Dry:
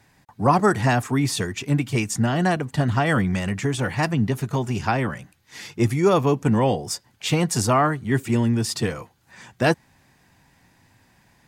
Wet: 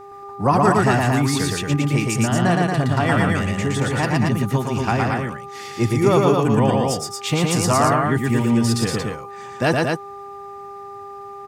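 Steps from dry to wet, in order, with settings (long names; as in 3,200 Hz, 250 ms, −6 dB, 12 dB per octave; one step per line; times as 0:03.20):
hum with harmonics 400 Hz, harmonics 3, −40 dBFS −2 dB per octave
loudspeakers that aren't time-aligned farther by 40 metres −2 dB, 78 metres −4 dB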